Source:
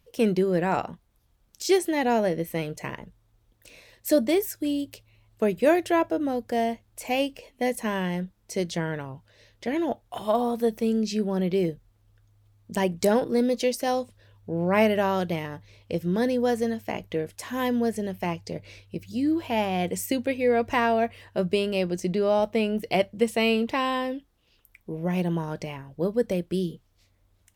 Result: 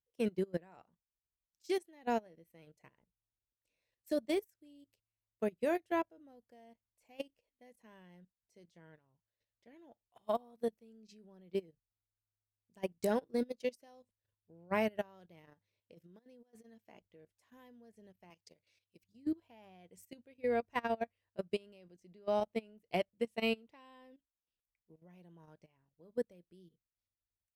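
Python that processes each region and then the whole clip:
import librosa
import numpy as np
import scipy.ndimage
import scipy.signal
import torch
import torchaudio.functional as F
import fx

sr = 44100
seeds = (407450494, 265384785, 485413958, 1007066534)

y = fx.chain(x, sr, fx.highpass(hz=140.0, slope=12),
    fx.over_compress(threshold_db=-28.0, ratio=-0.5), at=(15.47, 16.99))
y = fx.chain(y, sr, fx.highpass(hz=230.0, slope=6),
    fx.high_shelf(hz=2100.0, db=11.0), at=(18.3, 19.04))
y = fx.level_steps(y, sr, step_db=11)
y = fx.upward_expand(y, sr, threshold_db=-37.0, expansion=2.5)
y = y * librosa.db_to_amplitude(-7.5)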